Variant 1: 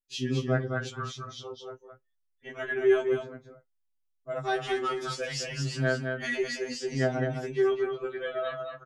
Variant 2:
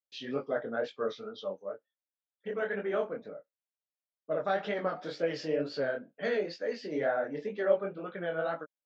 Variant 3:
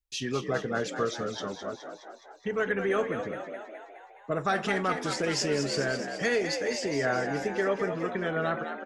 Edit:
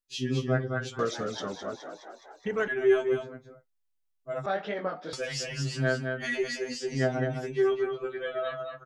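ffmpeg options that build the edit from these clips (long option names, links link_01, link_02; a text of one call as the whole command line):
ffmpeg -i take0.wav -i take1.wav -i take2.wav -filter_complex "[0:a]asplit=3[link_01][link_02][link_03];[link_01]atrim=end=0.992[link_04];[2:a]atrim=start=0.988:end=2.682[link_05];[link_02]atrim=start=2.678:end=4.462[link_06];[1:a]atrim=start=4.458:end=5.132[link_07];[link_03]atrim=start=5.128[link_08];[link_04][link_05]acrossfade=duration=0.004:curve1=hsin:curve2=hsin[link_09];[link_09][link_06]acrossfade=duration=0.004:curve1=hsin:curve2=hsin[link_10];[link_10][link_07]acrossfade=duration=0.004:curve1=hsin:curve2=hsin[link_11];[link_11][link_08]acrossfade=duration=0.004:curve1=hsin:curve2=hsin" out.wav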